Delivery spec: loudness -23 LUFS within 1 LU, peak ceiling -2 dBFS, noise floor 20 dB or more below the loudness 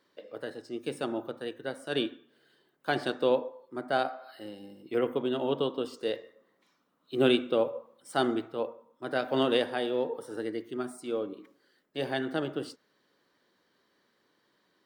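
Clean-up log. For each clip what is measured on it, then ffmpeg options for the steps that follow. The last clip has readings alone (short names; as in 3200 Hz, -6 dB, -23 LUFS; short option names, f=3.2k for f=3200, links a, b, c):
loudness -31.5 LUFS; peak -11.5 dBFS; loudness target -23.0 LUFS
-> -af "volume=8.5dB"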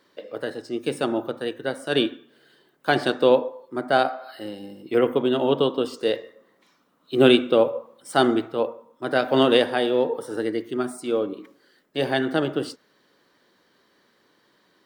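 loudness -23.0 LUFS; peak -3.0 dBFS; noise floor -64 dBFS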